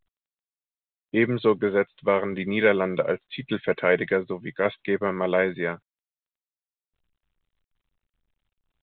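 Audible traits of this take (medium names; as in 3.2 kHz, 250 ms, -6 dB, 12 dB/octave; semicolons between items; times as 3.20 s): tremolo saw down 0.86 Hz, depth 30%; µ-law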